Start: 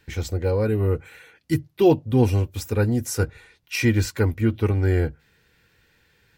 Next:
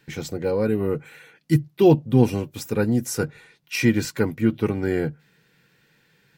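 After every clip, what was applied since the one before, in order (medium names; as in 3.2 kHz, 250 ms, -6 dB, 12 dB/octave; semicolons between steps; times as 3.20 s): resonant low shelf 110 Hz -10 dB, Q 3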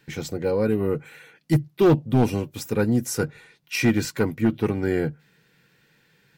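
overload inside the chain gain 12 dB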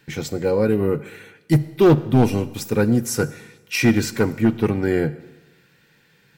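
Schroeder reverb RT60 1.1 s, combs from 27 ms, DRR 15.5 dB; trim +3.5 dB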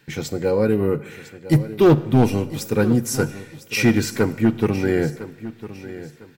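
feedback delay 1004 ms, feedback 30%, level -15 dB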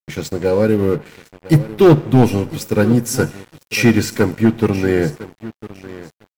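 crossover distortion -39 dBFS; trim +4.5 dB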